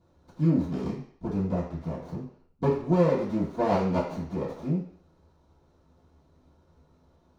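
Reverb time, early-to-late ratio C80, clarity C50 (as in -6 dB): 0.55 s, 9.0 dB, 5.0 dB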